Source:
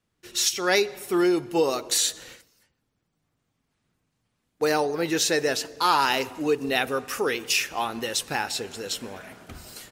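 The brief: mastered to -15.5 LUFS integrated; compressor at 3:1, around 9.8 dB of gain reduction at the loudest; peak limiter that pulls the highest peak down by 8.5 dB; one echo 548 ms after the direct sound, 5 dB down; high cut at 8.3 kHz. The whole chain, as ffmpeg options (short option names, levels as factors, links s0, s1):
-af "lowpass=8300,acompressor=threshold=0.0282:ratio=3,alimiter=limit=0.0668:level=0:latency=1,aecho=1:1:548:0.562,volume=7.94"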